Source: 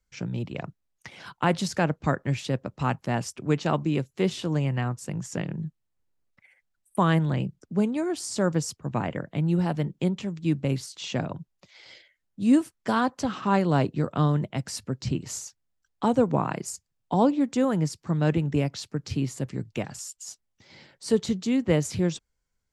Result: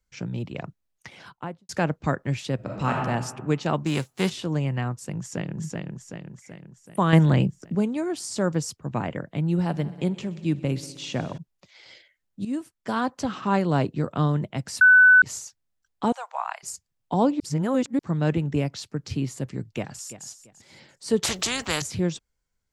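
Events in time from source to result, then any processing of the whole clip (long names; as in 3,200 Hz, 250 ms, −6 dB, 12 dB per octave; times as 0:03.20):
0:01.10–0:01.69: fade out and dull
0:02.55–0:02.95: thrown reverb, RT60 1.3 s, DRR −2 dB
0:03.85–0:04.29: spectral envelope flattened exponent 0.6
0:05.18–0:05.59: delay throw 380 ms, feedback 55%, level −2.5 dB
0:07.13–0:07.75: clip gain +7 dB
0:09.51–0:11.38: echo machine with several playback heads 63 ms, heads all three, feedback 61%, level −23 dB
0:12.45–0:13.17: fade in, from −13 dB
0:14.81–0:15.22: beep over 1,500 Hz −10 dBFS
0:16.12–0:16.63: Butterworth high-pass 700 Hz 48 dB per octave
0:17.40–0:17.99: reverse
0:19.74–0:20.27: delay throw 340 ms, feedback 25%, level −13.5 dB
0:21.23–0:21.82: every bin compressed towards the loudest bin 4 to 1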